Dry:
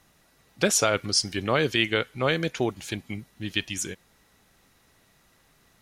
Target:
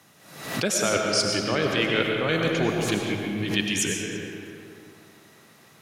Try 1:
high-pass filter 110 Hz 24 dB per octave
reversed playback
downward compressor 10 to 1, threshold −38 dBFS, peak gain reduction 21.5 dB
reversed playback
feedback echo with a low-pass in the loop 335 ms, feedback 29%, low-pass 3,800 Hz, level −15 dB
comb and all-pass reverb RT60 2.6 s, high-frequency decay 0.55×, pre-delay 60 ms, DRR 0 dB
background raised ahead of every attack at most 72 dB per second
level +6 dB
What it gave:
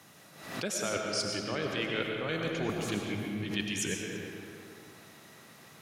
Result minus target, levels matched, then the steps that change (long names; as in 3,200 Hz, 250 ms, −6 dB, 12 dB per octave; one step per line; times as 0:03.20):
downward compressor: peak gain reduction +9.5 dB
change: downward compressor 10 to 1, threshold −27.5 dBFS, peak gain reduction 12 dB